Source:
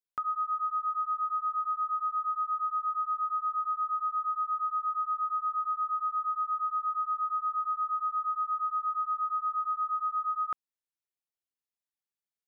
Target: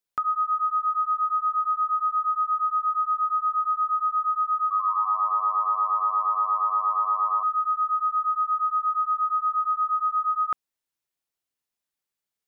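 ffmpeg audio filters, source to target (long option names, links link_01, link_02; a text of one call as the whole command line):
ffmpeg -i in.wav -filter_complex "[0:a]asettb=1/sr,asplit=3[link_01][link_02][link_03];[link_01]atrim=end=4.624[link_04];[link_02]atrim=start=4.62:end=7.43,asetpts=PTS-STARTPTS,afade=type=in:duration=0.004:curve=qsin,afade=type=out:start_time=2.806:duration=0.004:curve=qsin,asplit=9[link_05][link_06][link_07][link_08][link_09][link_10][link_11][link_12][link_13];[link_06]adelay=86,afreqshift=-100,volume=-9dB[link_14];[link_07]adelay=172,afreqshift=-200,volume=-13dB[link_15];[link_08]adelay=258,afreqshift=-300,volume=-17dB[link_16];[link_09]adelay=344,afreqshift=-400,volume=-21dB[link_17];[link_10]adelay=430,afreqshift=-500,volume=-25.1dB[link_18];[link_11]adelay=516,afreqshift=-600,volume=-29.1dB[link_19];[link_12]adelay=602,afreqshift=-700,volume=-33.1dB[link_20];[link_13]adelay=688,afreqshift=-800,volume=-37.1dB[link_21];[link_05][link_14][link_15][link_16][link_17][link_18][link_19][link_20][link_21]amix=inputs=9:normalize=0,atrim=end_sample=123921[link_22];[link_03]atrim=start=7.426[link_23];[link_04][link_22]acrossfade=duration=0.004:curve1=hsin:curve2=qsin[link_24];[link_24][link_23]acrossfade=duration=0.004:curve1=qsin:curve2=hsin,volume=6.5dB" out.wav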